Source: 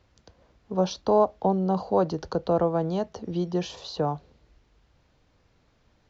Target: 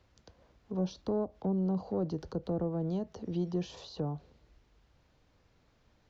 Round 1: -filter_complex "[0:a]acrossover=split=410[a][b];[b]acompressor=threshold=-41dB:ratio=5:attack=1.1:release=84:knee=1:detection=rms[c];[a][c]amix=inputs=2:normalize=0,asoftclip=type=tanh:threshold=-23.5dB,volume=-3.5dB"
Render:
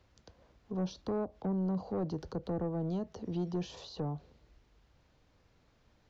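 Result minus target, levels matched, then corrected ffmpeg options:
soft clip: distortion +12 dB
-filter_complex "[0:a]acrossover=split=410[a][b];[b]acompressor=threshold=-41dB:ratio=5:attack=1.1:release=84:knee=1:detection=rms[c];[a][c]amix=inputs=2:normalize=0,asoftclip=type=tanh:threshold=-16dB,volume=-3.5dB"

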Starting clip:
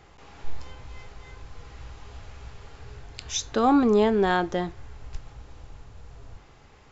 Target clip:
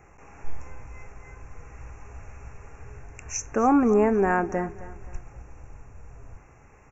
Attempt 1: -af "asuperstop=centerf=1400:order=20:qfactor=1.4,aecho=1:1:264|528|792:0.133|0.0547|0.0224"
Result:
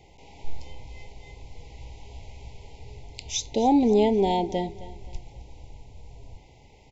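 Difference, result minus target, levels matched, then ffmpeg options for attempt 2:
4000 Hz band +15.5 dB
-af "asuperstop=centerf=3900:order=20:qfactor=1.4,aecho=1:1:264|528|792:0.133|0.0547|0.0224"

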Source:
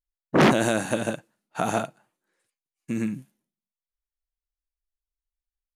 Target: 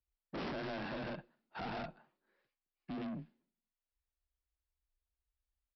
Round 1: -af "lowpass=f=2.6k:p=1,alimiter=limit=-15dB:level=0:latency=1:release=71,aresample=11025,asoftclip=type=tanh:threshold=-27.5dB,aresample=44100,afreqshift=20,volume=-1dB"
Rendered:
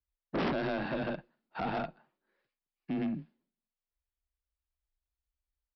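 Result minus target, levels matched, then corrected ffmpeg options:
soft clip: distortion -5 dB
-af "lowpass=f=2.6k:p=1,alimiter=limit=-15dB:level=0:latency=1:release=71,aresample=11025,asoftclip=type=tanh:threshold=-38.5dB,aresample=44100,afreqshift=20,volume=-1dB"

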